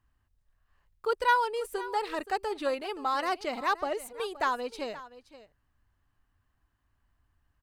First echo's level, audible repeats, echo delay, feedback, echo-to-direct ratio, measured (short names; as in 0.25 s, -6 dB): -16.5 dB, 1, 0.523 s, no steady repeat, -16.5 dB